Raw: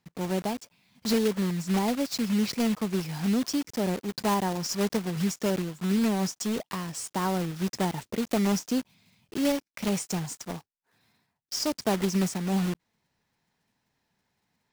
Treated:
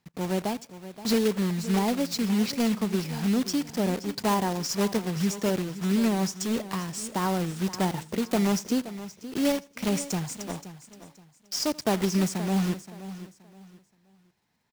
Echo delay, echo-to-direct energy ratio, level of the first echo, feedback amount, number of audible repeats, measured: 83 ms, −13.0 dB, −22.5 dB, repeats not evenly spaced, 3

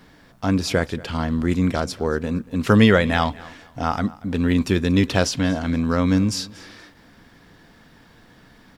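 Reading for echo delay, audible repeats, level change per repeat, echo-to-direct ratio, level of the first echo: 234 ms, 2, −11.5 dB, −20.5 dB, −21.0 dB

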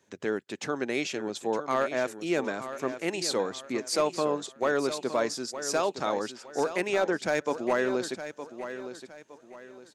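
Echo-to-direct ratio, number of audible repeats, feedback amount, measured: −10.5 dB, 3, 33%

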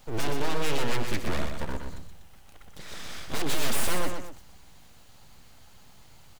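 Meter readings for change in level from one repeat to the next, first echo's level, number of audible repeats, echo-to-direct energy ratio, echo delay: −8.0 dB, −6.0 dB, 2, −5.5 dB, 123 ms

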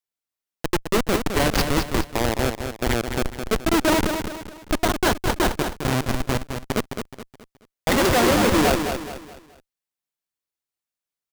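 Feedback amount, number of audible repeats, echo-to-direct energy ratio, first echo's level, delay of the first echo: 38%, 4, −6.5 dB, −7.0 dB, 212 ms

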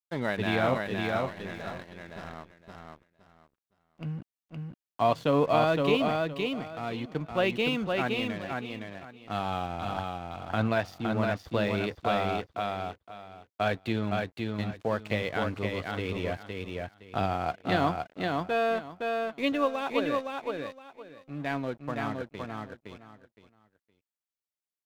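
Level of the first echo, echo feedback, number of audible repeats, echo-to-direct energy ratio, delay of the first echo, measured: −3.5 dB, 22%, 3, −3.5 dB, 515 ms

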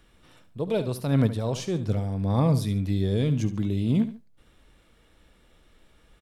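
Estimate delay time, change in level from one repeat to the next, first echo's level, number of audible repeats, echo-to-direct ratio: 72 ms, −9.5 dB, −12.5 dB, 2, −12.0 dB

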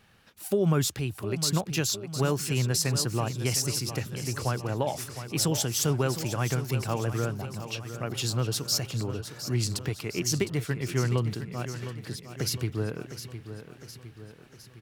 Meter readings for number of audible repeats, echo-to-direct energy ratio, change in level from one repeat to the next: 5, −9.5 dB, −5.5 dB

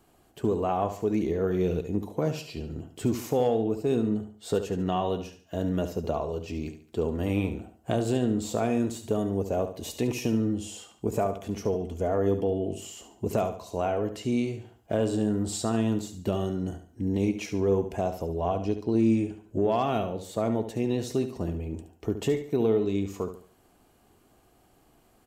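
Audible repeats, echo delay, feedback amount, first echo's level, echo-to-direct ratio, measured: 3, 71 ms, 36%, −10.0 dB, −9.5 dB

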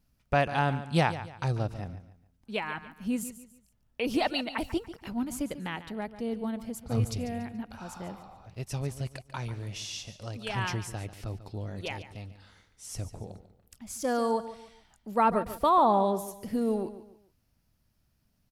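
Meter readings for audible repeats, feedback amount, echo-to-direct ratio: 3, 34%, −13.0 dB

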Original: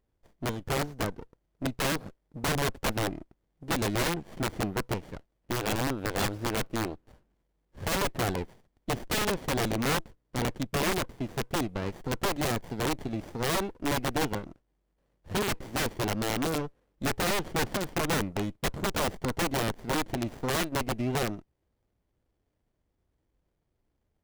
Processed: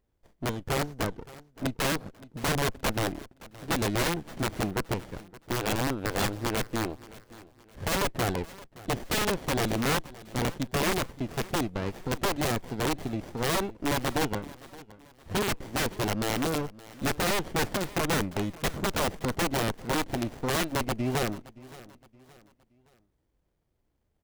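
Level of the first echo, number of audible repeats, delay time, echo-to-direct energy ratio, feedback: −19.5 dB, 2, 570 ms, −19.0 dB, 38%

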